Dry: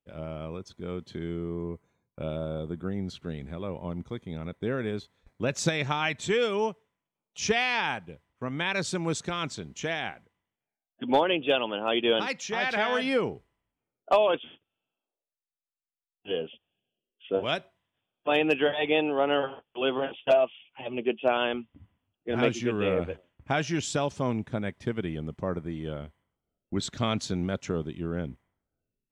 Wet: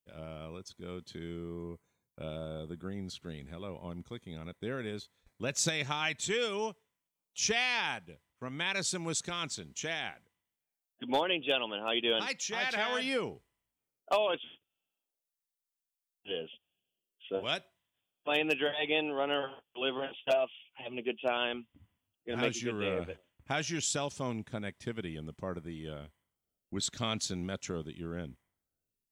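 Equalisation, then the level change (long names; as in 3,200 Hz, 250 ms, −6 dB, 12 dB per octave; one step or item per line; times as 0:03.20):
first-order pre-emphasis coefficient 0.8
high-shelf EQ 6,900 Hz −4 dB
+6.0 dB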